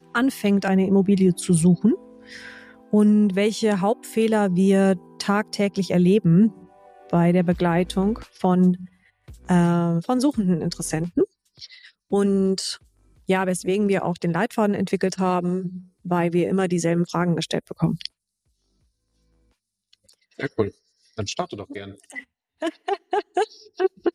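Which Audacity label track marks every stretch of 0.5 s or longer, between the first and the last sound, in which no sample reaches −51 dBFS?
18.080000	19.930000	silence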